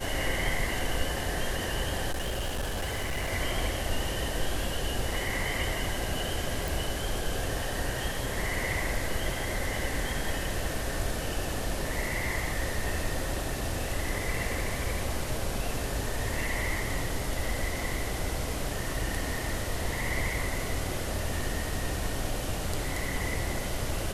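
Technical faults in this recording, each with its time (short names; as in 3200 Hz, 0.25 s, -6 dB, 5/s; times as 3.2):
2.11–3.33 clipped -27.5 dBFS
6.68 pop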